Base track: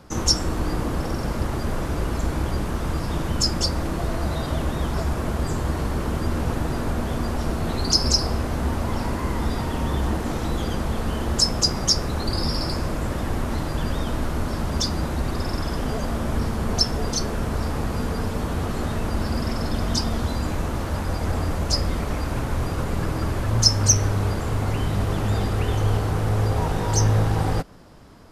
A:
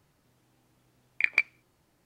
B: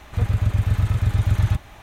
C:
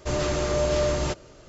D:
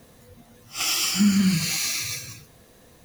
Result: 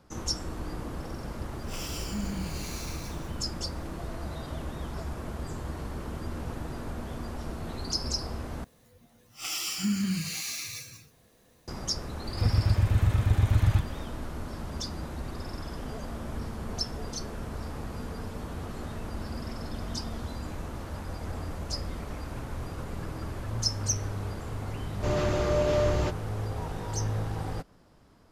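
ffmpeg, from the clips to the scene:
ffmpeg -i bed.wav -i cue0.wav -i cue1.wav -i cue2.wav -i cue3.wav -filter_complex "[4:a]asplit=2[link_01][link_02];[0:a]volume=-11.5dB[link_03];[3:a]lowpass=frequency=2600:poles=1[link_04];[link_03]asplit=2[link_05][link_06];[link_05]atrim=end=8.644[link_07];[link_02]atrim=end=3.04,asetpts=PTS-STARTPTS,volume=-9dB[link_08];[link_06]atrim=start=11.676[link_09];[link_01]atrim=end=3.04,asetpts=PTS-STARTPTS,volume=-16dB,afade=type=in:duration=0.004:curve=hsin,afade=type=out:start_time=3.036:duration=0.004:curve=hsin,adelay=930[link_10];[2:a]atrim=end=1.82,asetpts=PTS-STARTPTS,volume=-4dB,afade=type=in:duration=0.004:curve=hsin,afade=type=out:start_time=1.816:duration=0.004:curve=hsin,adelay=12240[link_11];[link_04]atrim=end=1.48,asetpts=PTS-STARTPTS,volume=-1.5dB,afade=type=in:duration=0.004:curve=hsin,afade=type=out:start_time=1.476:duration=0.004:curve=hsin,adelay=24970[link_12];[link_07][link_08]acrossfade=duration=0.004:curve1=hsin:curve2=hsin[link_13];[link_13][link_09]acrossfade=duration=0.004:curve1=hsin:curve2=hsin[link_14];[link_14][link_10][link_11][link_12]amix=inputs=4:normalize=0" out.wav

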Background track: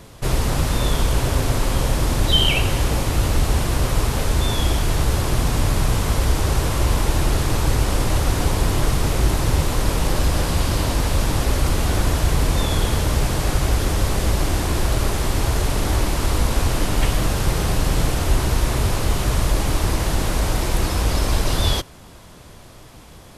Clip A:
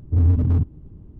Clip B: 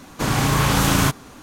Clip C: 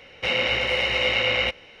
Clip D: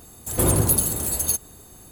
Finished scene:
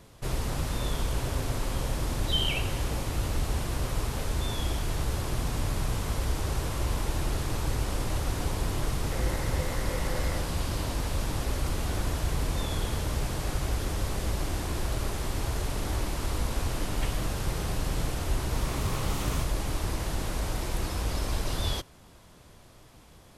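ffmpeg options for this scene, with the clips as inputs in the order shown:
ffmpeg -i bed.wav -i cue0.wav -i cue1.wav -i cue2.wav -filter_complex "[0:a]volume=-10.5dB[link_01];[3:a]asuperstop=centerf=3100:order=20:qfactor=1.2[link_02];[2:a]asuperstop=centerf=1600:order=4:qfactor=4.4[link_03];[link_02]atrim=end=1.8,asetpts=PTS-STARTPTS,volume=-11.5dB,afade=type=in:duration=0.004:curve=hsin,afade=type=out:start_time=1.796:duration=0.004:curve=hsin,adelay=8880[link_04];[link_03]atrim=end=1.42,asetpts=PTS-STARTPTS,volume=-18dB,afade=type=in:duration=0.004:curve=hsin,afade=type=out:start_time=1.416:duration=0.004:curve=hsin,adelay=18330[link_05];[link_01][link_04][link_05]amix=inputs=3:normalize=0" out.wav

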